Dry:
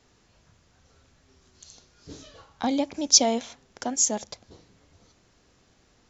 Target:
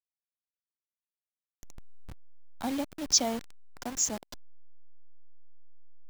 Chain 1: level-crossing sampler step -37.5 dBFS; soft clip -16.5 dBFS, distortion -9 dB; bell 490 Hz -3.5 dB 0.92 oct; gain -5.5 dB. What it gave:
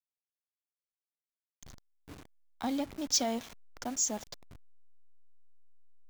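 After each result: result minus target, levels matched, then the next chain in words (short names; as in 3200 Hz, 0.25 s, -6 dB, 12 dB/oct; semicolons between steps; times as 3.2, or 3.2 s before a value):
soft clip: distortion +14 dB; level-crossing sampler: distortion -10 dB
level-crossing sampler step -37.5 dBFS; soft clip -5 dBFS, distortion -23 dB; bell 490 Hz -3.5 dB 0.92 oct; gain -5.5 dB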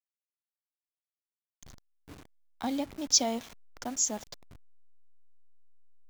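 level-crossing sampler: distortion -10 dB
level-crossing sampler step -29 dBFS; soft clip -5 dBFS, distortion -23 dB; bell 490 Hz -3.5 dB 0.92 oct; gain -5.5 dB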